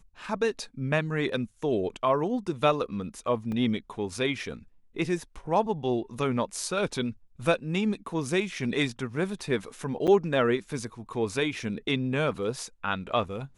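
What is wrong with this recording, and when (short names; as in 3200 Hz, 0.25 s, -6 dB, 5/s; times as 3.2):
3.52 gap 2.4 ms
10.07–10.08 gap 7.4 ms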